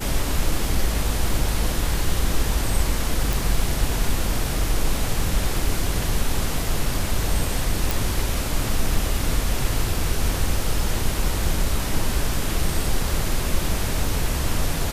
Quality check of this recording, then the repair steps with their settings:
0:03.33: click
0:07.91: click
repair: click removal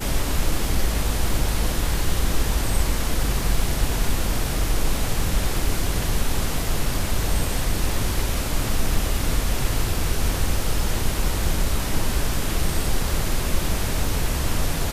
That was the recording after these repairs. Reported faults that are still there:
none of them is left

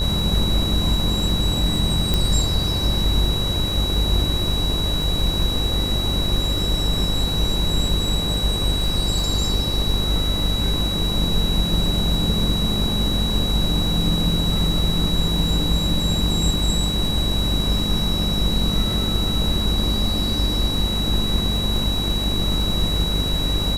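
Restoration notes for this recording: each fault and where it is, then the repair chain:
mains buzz 50 Hz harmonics 24 −25 dBFS
surface crackle 48 per second −28 dBFS
whistle 3,900 Hz −24 dBFS
0:02.14: click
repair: click removal
hum removal 50 Hz, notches 24
notch filter 3,900 Hz, Q 30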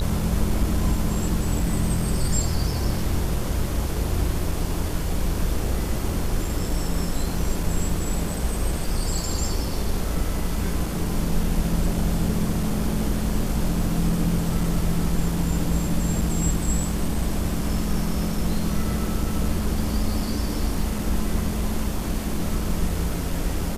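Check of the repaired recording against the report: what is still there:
0:02.14: click

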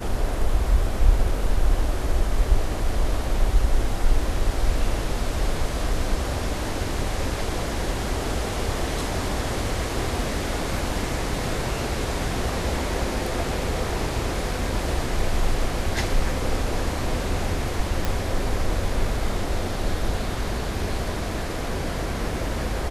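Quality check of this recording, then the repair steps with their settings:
0:18.05: click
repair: click removal

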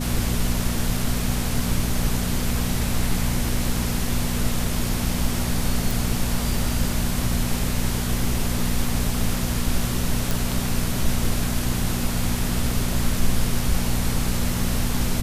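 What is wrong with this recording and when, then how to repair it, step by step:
mains hum 60 Hz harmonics 4 −27 dBFS
0:05.91: click
0:10.31: click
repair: click removal
hum removal 60 Hz, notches 4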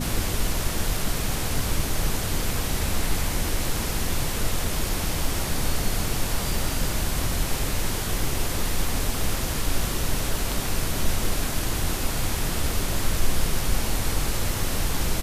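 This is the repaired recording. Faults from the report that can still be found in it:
none of them is left

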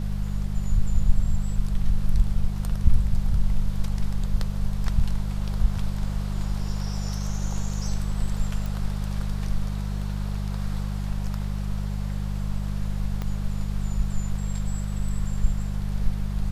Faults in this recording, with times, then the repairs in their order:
mains hum 50 Hz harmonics 4 −28 dBFS
0:08.66: click
0:13.22: click −18 dBFS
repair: click removal
hum removal 50 Hz, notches 4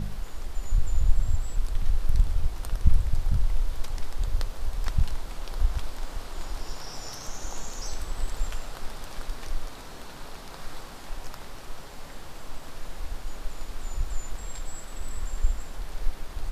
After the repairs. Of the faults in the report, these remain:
0:13.22: click

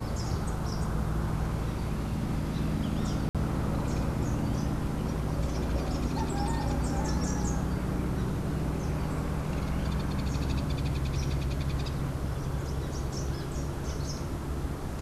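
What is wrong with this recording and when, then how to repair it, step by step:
0:03.29–0:03.35: drop-out 57 ms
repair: repair the gap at 0:03.29, 57 ms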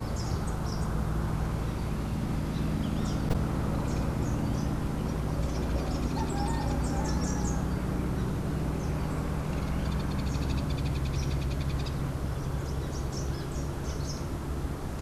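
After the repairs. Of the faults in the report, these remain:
none of them is left

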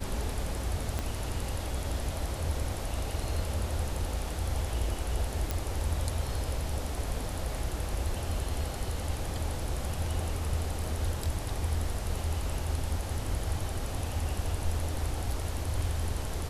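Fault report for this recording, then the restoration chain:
0:00.99: click −17 dBFS
0:05.51: click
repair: click removal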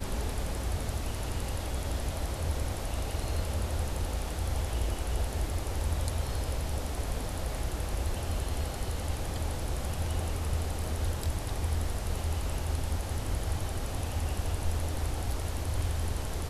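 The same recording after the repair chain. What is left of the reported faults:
0:00.99: click

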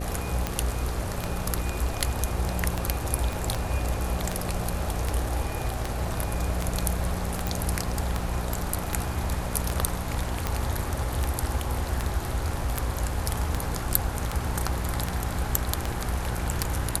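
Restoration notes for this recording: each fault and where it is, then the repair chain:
mains buzz 60 Hz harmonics 9 −33 dBFS
scratch tick 78 rpm −11 dBFS
0:03.33: click
0:07.47: click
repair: click removal
hum removal 60 Hz, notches 9

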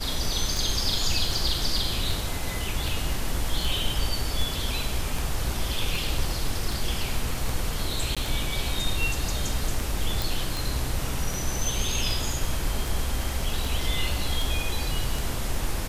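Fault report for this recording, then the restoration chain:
scratch tick 78 rpm
0:08.15–0:08.17: drop-out 16 ms
0:10.22: click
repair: click removal
repair the gap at 0:08.15, 16 ms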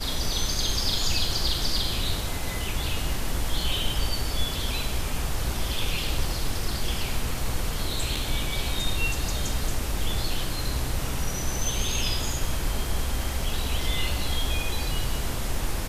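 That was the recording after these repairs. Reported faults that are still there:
none of them is left

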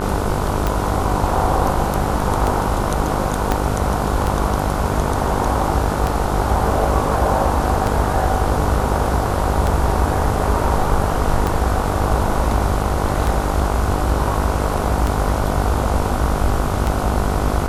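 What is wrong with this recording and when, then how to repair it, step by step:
mains buzz 50 Hz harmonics 30 −23 dBFS
scratch tick 33 1/3 rpm
0:03.52: click −4 dBFS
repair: click removal
hum removal 50 Hz, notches 30

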